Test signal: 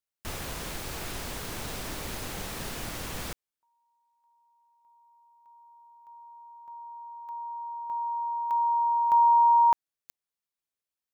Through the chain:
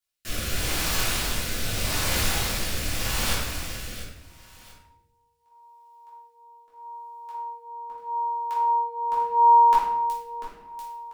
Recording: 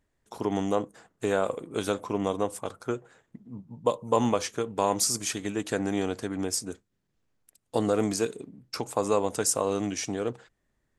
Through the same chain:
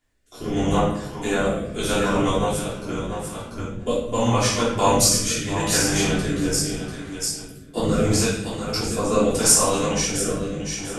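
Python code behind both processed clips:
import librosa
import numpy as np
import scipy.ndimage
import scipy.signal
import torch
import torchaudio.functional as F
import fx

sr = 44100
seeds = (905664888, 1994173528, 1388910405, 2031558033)

p1 = fx.octave_divider(x, sr, octaves=1, level_db=3.0)
p2 = fx.tilt_shelf(p1, sr, db=-7.0, hz=870.0)
p3 = p2 + fx.echo_feedback(p2, sr, ms=692, feedback_pct=15, wet_db=-7.5, dry=0)
p4 = fx.room_shoebox(p3, sr, seeds[0], volume_m3=240.0, walls='mixed', distance_m=3.2)
p5 = fx.rotary(p4, sr, hz=0.8)
y = F.gain(torch.from_numpy(p5), -1.5).numpy()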